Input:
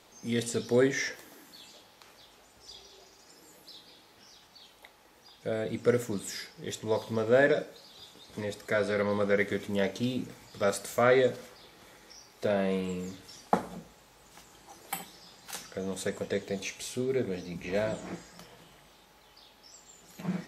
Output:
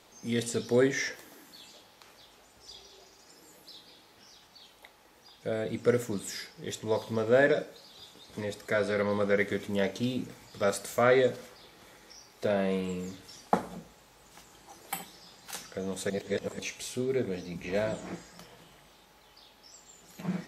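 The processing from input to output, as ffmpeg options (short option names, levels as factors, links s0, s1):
-filter_complex "[0:a]asplit=3[s0][s1][s2];[s0]atrim=end=16.102[s3];[s1]atrim=start=16.098:end=16.592,asetpts=PTS-STARTPTS,areverse[s4];[s2]atrim=start=16.588[s5];[s3][s4]acrossfade=d=0.004:c1=hsin:c2=hsin[s6];[s6][s5]acrossfade=d=0.004:c1=hsin:c2=hsin"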